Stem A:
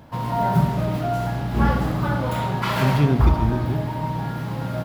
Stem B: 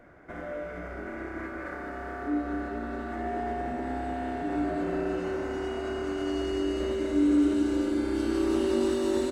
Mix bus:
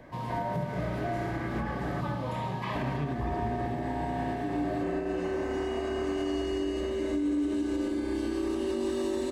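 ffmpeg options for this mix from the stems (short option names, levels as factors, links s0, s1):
-filter_complex "[0:a]lowpass=9900,acrossover=split=2900[s0][s1];[s1]acompressor=threshold=0.00708:ratio=4:attack=1:release=60[s2];[s0][s2]amix=inputs=2:normalize=0,highpass=f=95:p=1,volume=0.398[s3];[1:a]volume=1.33,asplit=3[s4][s5][s6];[s4]atrim=end=2.01,asetpts=PTS-STARTPTS,afade=t=out:st=2.006:d=0.004:c=hsin[s7];[s5]atrim=start=2.01:end=2.75,asetpts=PTS-STARTPTS,volume=0[s8];[s6]atrim=start=2.75,asetpts=PTS-STARTPTS,afade=t=in:d=0.004:c=hsin[s9];[s7][s8][s9]concat=n=3:v=0:a=1[s10];[s3][s10]amix=inputs=2:normalize=0,asuperstop=centerf=1400:order=20:qfactor=7.5,alimiter=limit=0.075:level=0:latency=1:release=193"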